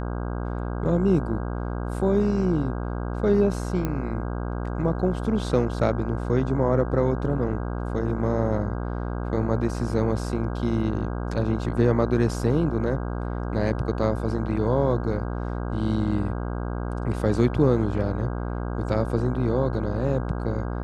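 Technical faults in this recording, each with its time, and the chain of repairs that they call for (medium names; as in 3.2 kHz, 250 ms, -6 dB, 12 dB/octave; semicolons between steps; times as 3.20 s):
buzz 60 Hz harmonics 27 -29 dBFS
3.85 s: pop -14 dBFS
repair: de-click; de-hum 60 Hz, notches 27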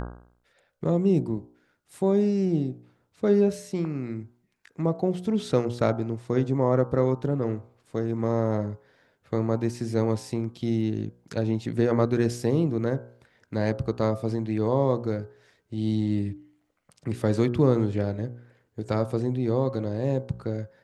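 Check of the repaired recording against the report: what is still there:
nothing left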